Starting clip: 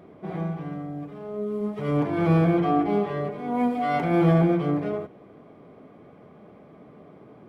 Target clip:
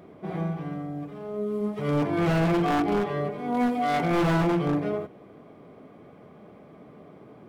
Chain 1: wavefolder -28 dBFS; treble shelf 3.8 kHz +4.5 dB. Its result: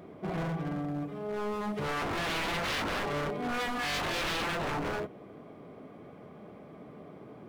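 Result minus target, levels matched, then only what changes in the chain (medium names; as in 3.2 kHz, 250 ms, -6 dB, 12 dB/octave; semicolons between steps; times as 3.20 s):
wavefolder: distortion +20 dB
change: wavefolder -18 dBFS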